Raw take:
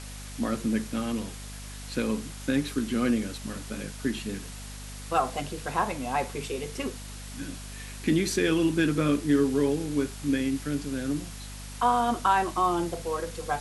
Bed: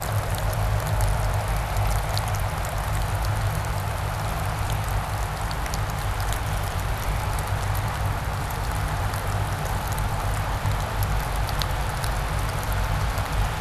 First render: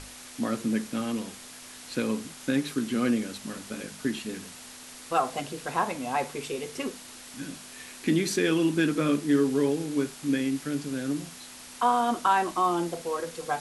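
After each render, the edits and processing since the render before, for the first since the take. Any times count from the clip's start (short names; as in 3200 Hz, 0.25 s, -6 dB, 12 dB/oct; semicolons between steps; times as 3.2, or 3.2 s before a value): notches 50/100/150/200 Hz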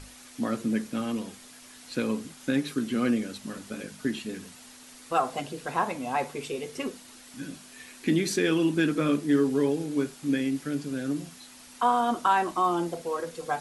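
denoiser 6 dB, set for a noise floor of -46 dBFS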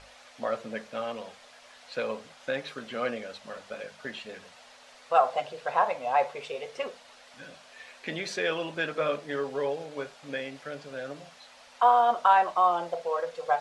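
LPF 4300 Hz 12 dB/oct; resonant low shelf 420 Hz -10.5 dB, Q 3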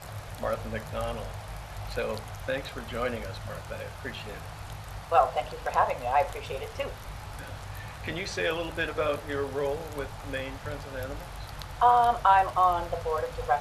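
add bed -15 dB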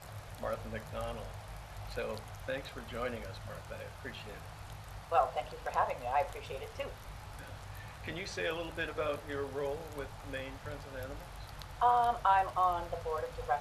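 gain -7 dB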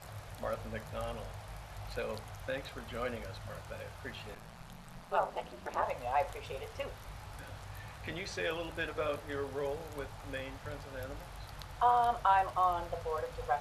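4.34–5.81 ring modulator 53 Hz -> 150 Hz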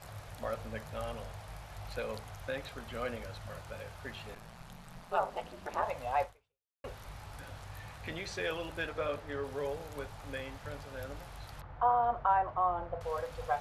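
6.23–6.84 fade out exponential; 8.85–9.43 LPF 7900 Hz -> 3400 Hz 6 dB/oct; 11.61–13.01 LPF 1500 Hz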